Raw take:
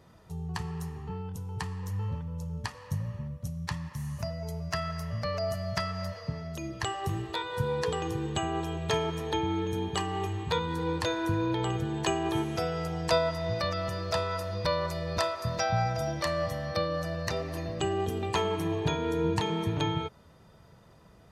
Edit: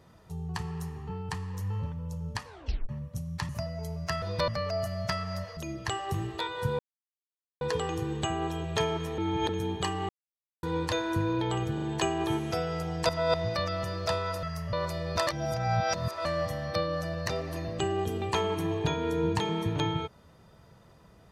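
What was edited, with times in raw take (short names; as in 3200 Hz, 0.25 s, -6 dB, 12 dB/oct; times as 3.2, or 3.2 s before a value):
1.29–1.58 cut
2.75 tape stop 0.43 s
3.78–4.13 cut
4.86–5.16 swap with 14.48–14.74
6.25–6.52 cut
7.74 insert silence 0.82 s
9.31–9.62 reverse
10.22–10.76 mute
11.87 stutter 0.04 s, 3 plays
13.14–13.39 reverse
15.28–16.26 reverse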